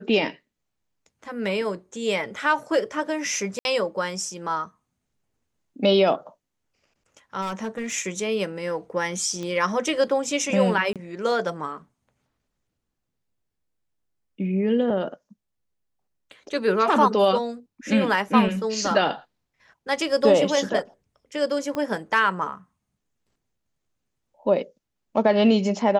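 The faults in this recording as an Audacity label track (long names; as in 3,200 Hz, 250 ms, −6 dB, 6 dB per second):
3.590000	3.650000	drop-out 61 ms
7.410000	7.930000	clipping −25 dBFS
9.430000	9.430000	click −21 dBFS
10.930000	10.960000	drop-out 27 ms
21.750000	21.750000	click −16 dBFS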